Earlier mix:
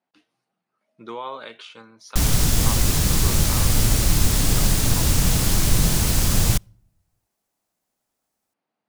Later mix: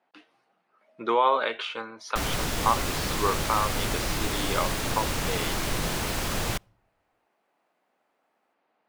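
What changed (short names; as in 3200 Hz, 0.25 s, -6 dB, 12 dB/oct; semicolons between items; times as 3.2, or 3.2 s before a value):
speech +11.5 dB; master: add tone controls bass -14 dB, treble -12 dB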